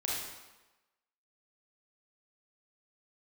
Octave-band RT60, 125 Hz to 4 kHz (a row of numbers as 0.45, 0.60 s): 0.90, 1.0, 1.1, 1.1, 1.0, 0.90 s